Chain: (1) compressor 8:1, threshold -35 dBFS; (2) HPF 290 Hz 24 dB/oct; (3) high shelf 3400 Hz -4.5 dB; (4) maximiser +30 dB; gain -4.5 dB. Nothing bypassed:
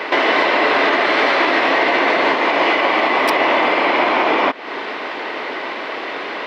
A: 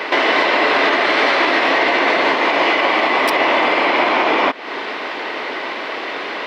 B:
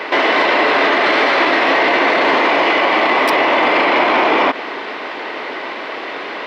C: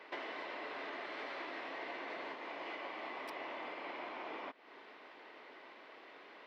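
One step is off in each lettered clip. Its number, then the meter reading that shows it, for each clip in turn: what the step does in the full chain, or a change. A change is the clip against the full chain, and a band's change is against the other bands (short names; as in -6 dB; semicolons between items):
3, 4 kHz band +2.0 dB; 1, mean gain reduction 9.0 dB; 4, crest factor change +4.0 dB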